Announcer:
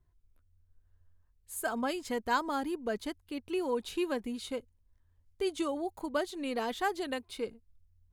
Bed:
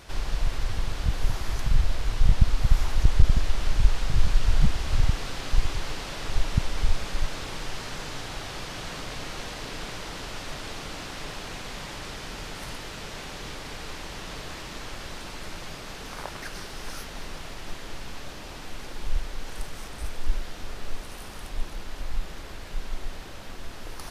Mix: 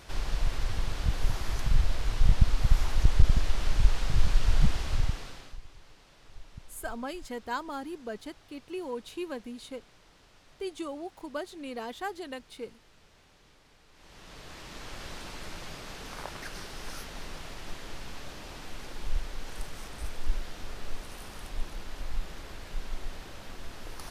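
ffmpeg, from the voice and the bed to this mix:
ffmpeg -i stem1.wav -i stem2.wav -filter_complex "[0:a]adelay=5200,volume=-4dB[link_01];[1:a]volume=17dB,afade=type=out:start_time=4.74:duration=0.84:silence=0.0944061,afade=type=in:start_time=13.92:duration=1.14:silence=0.105925[link_02];[link_01][link_02]amix=inputs=2:normalize=0" out.wav

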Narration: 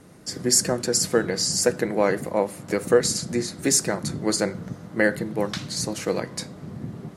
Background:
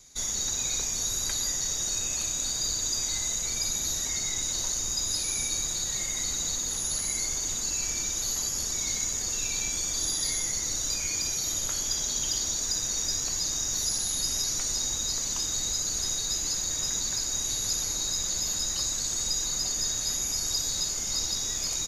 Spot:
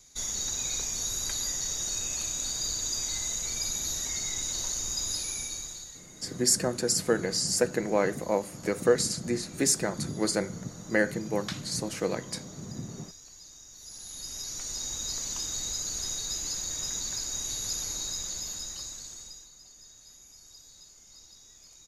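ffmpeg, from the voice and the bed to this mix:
ffmpeg -i stem1.wav -i stem2.wav -filter_complex "[0:a]adelay=5950,volume=-4.5dB[link_01];[1:a]volume=14dB,afade=type=out:start_time=5.09:duration=0.94:silence=0.125893,afade=type=in:start_time=13.78:duration=1.34:silence=0.149624,afade=type=out:start_time=17.96:duration=1.54:silence=0.105925[link_02];[link_01][link_02]amix=inputs=2:normalize=0" out.wav

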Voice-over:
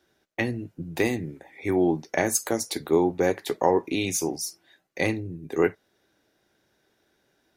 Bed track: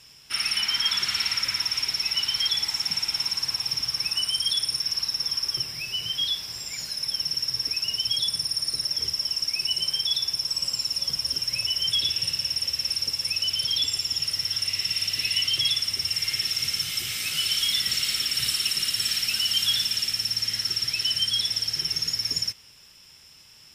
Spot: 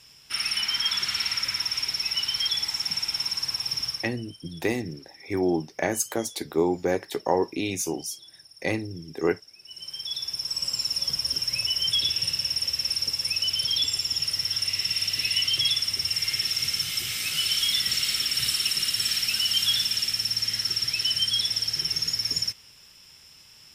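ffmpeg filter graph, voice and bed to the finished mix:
ffmpeg -i stem1.wav -i stem2.wav -filter_complex "[0:a]adelay=3650,volume=-2dB[link_01];[1:a]volume=22dB,afade=type=out:start_time=3.87:duration=0.24:silence=0.0794328,afade=type=in:start_time=9.63:duration=1.19:silence=0.0668344[link_02];[link_01][link_02]amix=inputs=2:normalize=0" out.wav

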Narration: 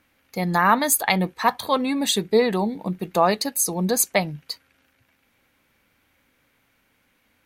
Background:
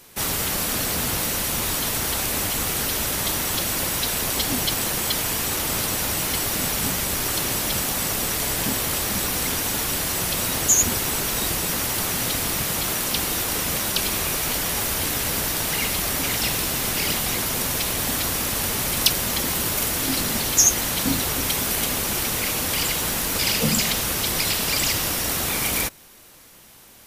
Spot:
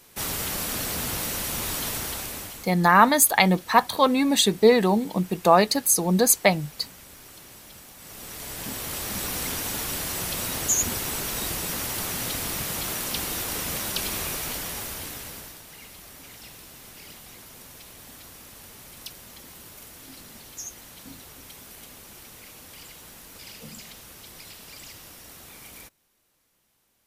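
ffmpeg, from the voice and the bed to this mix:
ffmpeg -i stem1.wav -i stem2.wav -filter_complex "[0:a]adelay=2300,volume=2dB[link_01];[1:a]volume=12dB,afade=type=out:start_time=1.89:duration=0.82:silence=0.133352,afade=type=in:start_time=7.98:duration=1.34:silence=0.141254,afade=type=out:start_time=14.21:duration=1.41:silence=0.158489[link_02];[link_01][link_02]amix=inputs=2:normalize=0" out.wav

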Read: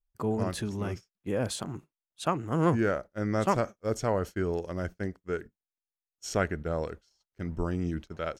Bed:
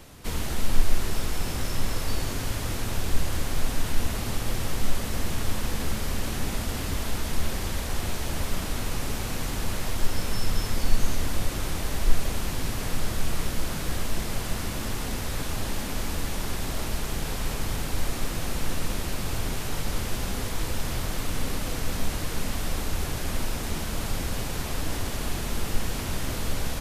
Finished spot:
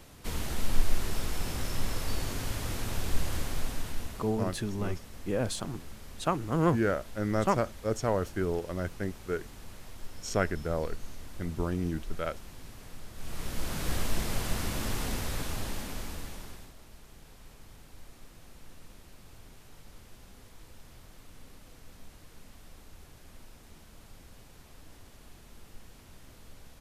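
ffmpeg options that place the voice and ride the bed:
ffmpeg -i stem1.wav -i stem2.wav -filter_complex "[0:a]adelay=4000,volume=-0.5dB[link_01];[1:a]volume=11.5dB,afade=type=out:start_time=3.36:duration=0.99:silence=0.211349,afade=type=in:start_time=13.14:duration=0.78:silence=0.158489,afade=type=out:start_time=15.04:duration=1.7:silence=0.0891251[link_02];[link_01][link_02]amix=inputs=2:normalize=0" out.wav

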